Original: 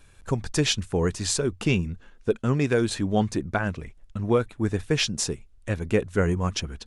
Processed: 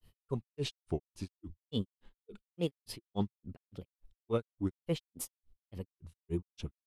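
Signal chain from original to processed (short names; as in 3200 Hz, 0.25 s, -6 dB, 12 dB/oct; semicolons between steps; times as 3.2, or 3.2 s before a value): grains 0.144 s, grains 3.5/s, spray 27 ms, pitch spread up and down by 3 st; fifteen-band EQ 630 Hz -4 dB, 1600 Hz -9 dB, 6300 Hz -9 dB; formant shift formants +2 st; gain -6.5 dB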